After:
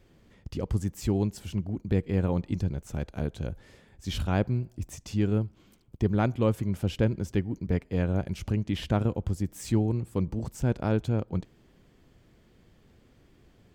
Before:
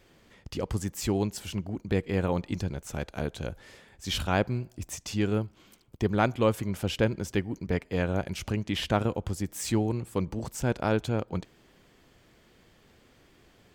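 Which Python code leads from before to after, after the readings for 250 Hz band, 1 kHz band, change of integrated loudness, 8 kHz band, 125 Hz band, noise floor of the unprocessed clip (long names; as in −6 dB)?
+1.5 dB, −4.5 dB, +0.5 dB, −6.5 dB, +3.5 dB, −61 dBFS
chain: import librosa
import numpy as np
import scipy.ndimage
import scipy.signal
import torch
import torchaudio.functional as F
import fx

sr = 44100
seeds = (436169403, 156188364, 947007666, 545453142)

y = fx.low_shelf(x, sr, hz=380.0, db=11.0)
y = y * librosa.db_to_amplitude(-6.5)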